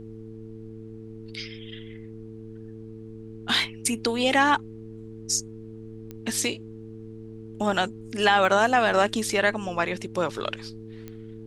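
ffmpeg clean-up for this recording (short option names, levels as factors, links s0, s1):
-af "adeclick=t=4,bandreject=f=110.8:t=h:w=4,bandreject=f=221.6:t=h:w=4,bandreject=f=332.4:t=h:w=4,bandreject=f=443.2:t=h:w=4,agate=range=0.0891:threshold=0.0224"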